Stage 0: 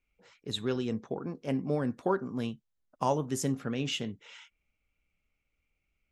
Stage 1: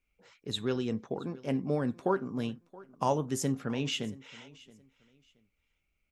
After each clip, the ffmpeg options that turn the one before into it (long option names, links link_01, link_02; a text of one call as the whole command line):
ffmpeg -i in.wav -af "aecho=1:1:674|1348:0.0841|0.021" out.wav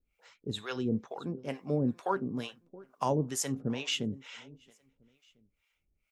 ffmpeg -i in.wav -filter_complex "[0:a]acrossover=split=590[link_01][link_02];[link_01]aeval=exprs='val(0)*(1-1/2+1/2*cos(2*PI*2.2*n/s))':channel_layout=same[link_03];[link_02]aeval=exprs='val(0)*(1-1/2-1/2*cos(2*PI*2.2*n/s))':channel_layout=same[link_04];[link_03][link_04]amix=inputs=2:normalize=0,volume=4dB" out.wav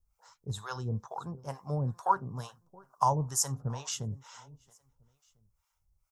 ffmpeg -i in.wav -af "firequalizer=gain_entry='entry(120,0);entry(250,-20);entry(940,3);entry(2300,-22);entry(5400,-1)':delay=0.05:min_phase=1,volume=6dB" out.wav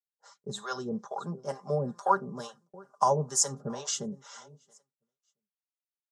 ffmpeg -i in.wav -af "highpass=frequency=170:width=0.5412,highpass=frequency=170:width=1.3066,equalizer=frequency=500:width_type=q:width=4:gain=7,equalizer=frequency=960:width_type=q:width=4:gain=-6,equalizer=frequency=2500:width_type=q:width=4:gain=-8,lowpass=frequency=8800:width=0.5412,lowpass=frequency=8800:width=1.3066,agate=range=-33dB:threshold=-60dB:ratio=3:detection=peak,aecho=1:1:5:0.71,volume=3dB" out.wav